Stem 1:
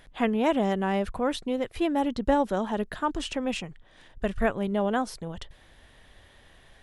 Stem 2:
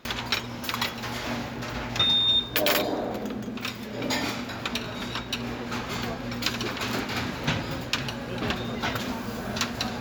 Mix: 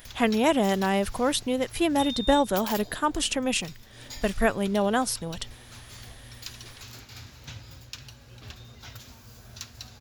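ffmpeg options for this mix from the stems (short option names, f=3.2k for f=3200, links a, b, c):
-filter_complex "[0:a]aemphasis=mode=production:type=75kf,volume=1.5dB[a];[1:a]firequalizer=gain_entry='entry(110,0);entry(170,-16);entry(5600,0)':delay=0.05:min_phase=1,volume=-7.5dB[b];[a][b]amix=inputs=2:normalize=0"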